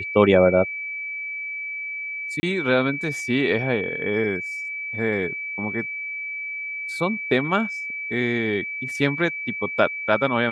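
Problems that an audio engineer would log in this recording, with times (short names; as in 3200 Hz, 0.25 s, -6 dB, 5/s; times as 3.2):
tone 2300 Hz -28 dBFS
2.4–2.43 gap 30 ms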